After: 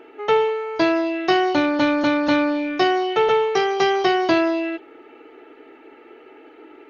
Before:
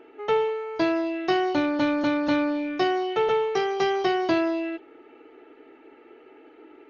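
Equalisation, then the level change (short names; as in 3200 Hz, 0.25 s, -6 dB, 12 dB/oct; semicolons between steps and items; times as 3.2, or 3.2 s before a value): low shelf 490 Hz -4 dB; +7.0 dB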